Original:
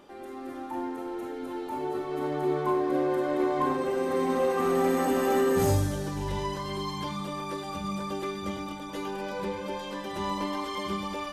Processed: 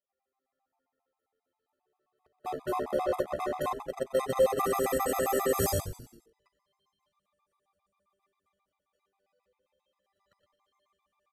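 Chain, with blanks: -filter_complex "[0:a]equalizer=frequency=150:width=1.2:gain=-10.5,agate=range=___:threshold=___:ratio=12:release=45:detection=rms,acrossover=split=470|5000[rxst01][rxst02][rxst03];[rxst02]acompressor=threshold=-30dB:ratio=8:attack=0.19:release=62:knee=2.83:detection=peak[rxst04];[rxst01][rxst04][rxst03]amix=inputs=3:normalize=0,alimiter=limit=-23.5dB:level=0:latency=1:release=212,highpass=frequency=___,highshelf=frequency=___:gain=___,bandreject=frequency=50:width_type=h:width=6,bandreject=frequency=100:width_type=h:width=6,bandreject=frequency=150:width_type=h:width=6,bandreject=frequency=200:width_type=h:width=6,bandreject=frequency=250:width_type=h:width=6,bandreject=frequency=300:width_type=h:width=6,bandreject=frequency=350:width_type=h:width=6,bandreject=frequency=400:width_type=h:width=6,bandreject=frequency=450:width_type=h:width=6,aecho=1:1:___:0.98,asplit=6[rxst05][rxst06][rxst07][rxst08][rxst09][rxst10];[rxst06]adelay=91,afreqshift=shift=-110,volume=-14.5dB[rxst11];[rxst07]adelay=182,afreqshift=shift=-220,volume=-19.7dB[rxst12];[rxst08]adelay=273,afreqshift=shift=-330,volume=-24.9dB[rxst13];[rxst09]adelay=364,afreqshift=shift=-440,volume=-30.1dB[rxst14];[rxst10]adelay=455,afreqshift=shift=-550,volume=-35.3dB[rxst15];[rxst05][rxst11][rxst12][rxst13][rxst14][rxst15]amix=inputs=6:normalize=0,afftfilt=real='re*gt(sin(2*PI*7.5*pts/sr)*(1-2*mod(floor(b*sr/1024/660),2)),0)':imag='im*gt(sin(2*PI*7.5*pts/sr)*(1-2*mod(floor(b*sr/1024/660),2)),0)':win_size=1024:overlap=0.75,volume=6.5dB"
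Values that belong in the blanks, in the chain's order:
-49dB, -27dB, 54, 11000, 8.5, 1.6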